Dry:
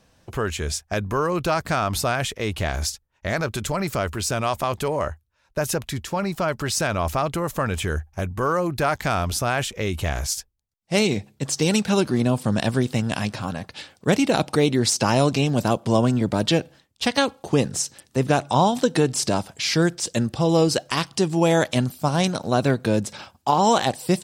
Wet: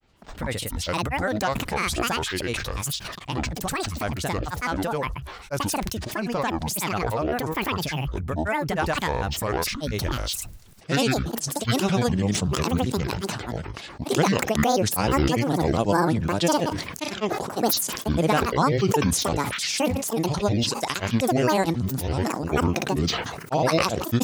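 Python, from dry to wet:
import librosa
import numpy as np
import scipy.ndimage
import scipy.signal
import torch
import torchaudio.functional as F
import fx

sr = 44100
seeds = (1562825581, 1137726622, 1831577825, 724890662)

y = fx.granulator(x, sr, seeds[0], grain_ms=100.0, per_s=20.0, spray_ms=100.0, spread_st=12)
y = fx.sustainer(y, sr, db_per_s=44.0)
y = F.gain(torch.from_numpy(y), -2.0).numpy()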